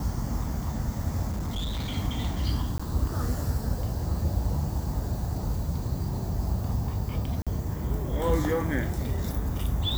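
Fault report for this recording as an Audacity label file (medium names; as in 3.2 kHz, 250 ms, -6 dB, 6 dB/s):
1.300000	1.970000	clipped -27 dBFS
2.780000	2.790000	dropout 15 ms
7.420000	7.470000	dropout 46 ms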